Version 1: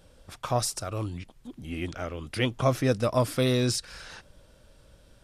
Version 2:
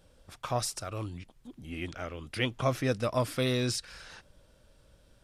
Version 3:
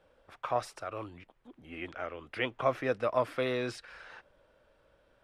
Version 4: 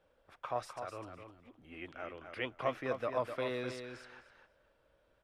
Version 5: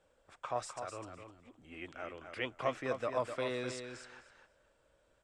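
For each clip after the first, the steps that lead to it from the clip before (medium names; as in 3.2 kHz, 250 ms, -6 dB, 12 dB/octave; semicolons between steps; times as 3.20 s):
dynamic bell 2.3 kHz, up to +4 dB, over -44 dBFS, Q 0.72; trim -5 dB
three-band isolator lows -14 dB, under 350 Hz, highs -19 dB, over 2.7 kHz; trim +2 dB
feedback delay 255 ms, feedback 16%, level -7.5 dB; trim -6 dB
resonant low-pass 7.8 kHz, resonance Q 4.7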